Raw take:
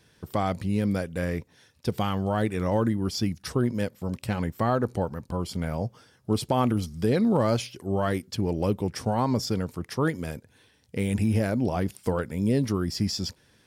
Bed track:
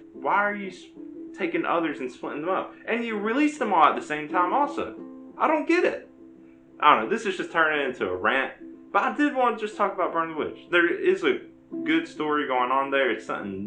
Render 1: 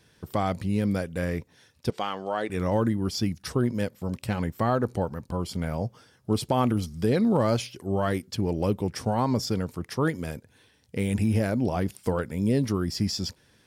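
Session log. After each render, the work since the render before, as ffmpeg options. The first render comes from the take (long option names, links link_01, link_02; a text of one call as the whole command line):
ffmpeg -i in.wav -filter_complex "[0:a]asettb=1/sr,asplit=3[link_01][link_02][link_03];[link_01]atrim=end=1.904[link_04];[link_02]atrim=start=1.9:end=2.5,asetpts=PTS-STARTPTS,afade=type=in:duration=0.004:curve=qsin,afade=type=out:start_time=0.596:duration=0.004:curve=qsin,highpass=390,lowpass=6800[link_05];[link_03]atrim=start=2.496[link_06];[link_04][link_05]acrossfade=duration=0.004:curve1=hsin:curve2=qsin[link_07];[link_07][link_06]acrossfade=duration=0.004:curve1=qsin:curve2=hsin" out.wav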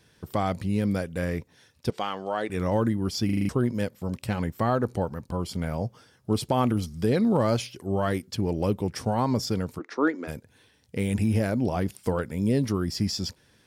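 ffmpeg -i in.wav -filter_complex "[0:a]asplit=3[link_01][link_02][link_03];[link_01]afade=type=out:start_time=9.78:duration=0.02[link_04];[link_02]highpass=frequency=290:width=0.5412,highpass=frequency=290:width=1.3066,equalizer=frequency=290:width_type=q:width=4:gain=9,equalizer=frequency=1400:width_type=q:width=4:gain=6,equalizer=frequency=3100:width_type=q:width=4:gain=-9,equalizer=frequency=5000:width_type=q:width=4:gain=-8,lowpass=frequency=5700:width=0.5412,lowpass=frequency=5700:width=1.3066,afade=type=in:start_time=9.78:duration=0.02,afade=type=out:start_time=10.27:duration=0.02[link_05];[link_03]afade=type=in:start_time=10.27:duration=0.02[link_06];[link_04][link_05][link_06]amix=inputs=3:normalize=0,asplit=7[link_07][link_08][link_09][link_10][link_11][link_12][link_13];[link_07]atrim=end=3.292[link_14];[link_08]atrim=start=3.248:end=3.292[link_15];[link_09]atrim=start=3.248:end=3.292[link_16];[link_10]atrim=start=3.248:end=3.292[link_17];[link_11]atrim=start=3.248:end=3.292[link_18];[link_12]atrim=start=3.248:end=3.292[link_19];[link_13]atrim=start=3.488[link_20];[link_14][link_15]acrossfade=duration=0.004:curve1=hsin:curve2=hsin[link_21];[link_21][link_16]acrossfade=duration=0.004:curve1=hsin:curve2=hsin[link_22];[link_22][link_17]acrossfade=duration=0.004:curve1=hsin:curve2=hsin[link_23];[link_23][link_18]acrossfade=duration=0.004:curve1=hsin:curve2=hsin[link_24];[link_24][link_19]acrossfade=duration=0.004:curve1=hsin:curve2=hsin[link_25];[link_25][link_20]acrossfade=duration=0.004:curve1=hsin:curve2=hsin" out.wav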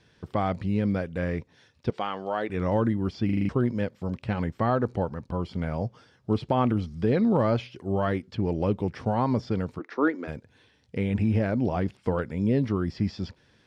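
ffmpeg -i in.wav -filter_complex "[0:a]acrossover=split=3400[link_01][link_02];[link_02]acompressor=threshold=-53dB:ratio=4:attack=1:release=60[link_03];[link_01][link_03]amix=inputs=2:normalize=0,lowpass=4900" out.wav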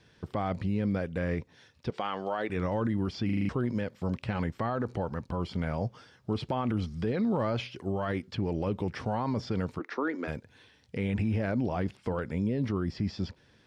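ffmpeg -i in.wav -filter_complex "[0:a]acrossover=split=830[link_01][link_02];[link_02]dynaudnorm=framelen=430:gausssize=9:maxgain=3dB[link_03];[link_01][link_03]amix=inputs=2:normalize=0,alimiter=limit=-21.5dB:level=0:latency=1:release=46" out.wav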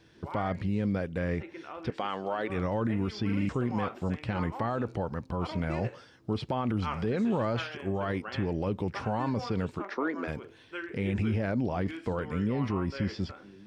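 ffmpeg -i in.wav -i bed.wav -filter_complex "[1:a]volume=-18.5dB[link_01];[0:a][link_01]amix=inputs=2:normalize=0" out.wav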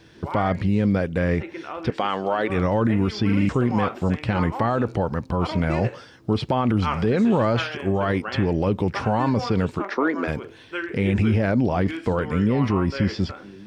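ffmpeg -i in.wav -af "volume=9dB" out.wav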